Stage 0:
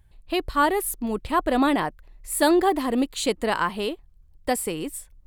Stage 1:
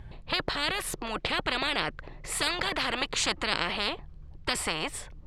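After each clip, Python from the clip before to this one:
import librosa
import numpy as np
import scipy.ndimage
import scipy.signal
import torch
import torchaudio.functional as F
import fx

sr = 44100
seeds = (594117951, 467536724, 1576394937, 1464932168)

y = scipy.signal.sosfilt(scipy.signal.cheby1(2, 1.0, 4500.0, 'lowpass', fs=sr, output='sos'), x)
y = fx.high_shelf(y, sr, hz=2100.0, db=-11.0)
y = fx.spectral_comp(y, sr, ratio=10.0)
y = y * 10.0 ** (-1.0 / 20.0)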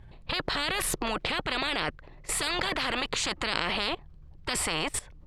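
y = fx.level_steps(x, sr, step_db=19)
y = y * 10.0 ** (8.5 / 20.0)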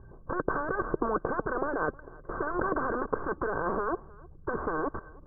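y = fx.tracing_dist(x, sr, depth_ms=0.31)
y = scipy.signal.sosfilt(scipy.signal.cheby1(6, 9, 1600.0, 'lowpass', fs=sr, output='sos'), y)
y = y + 10.0 ** (-23.5 / 20.0) * np.pad(y, (int(312 * sr / 1000.0), 0))[:len(y)]
y = y * 10.0 ** (7.5 / 20.0)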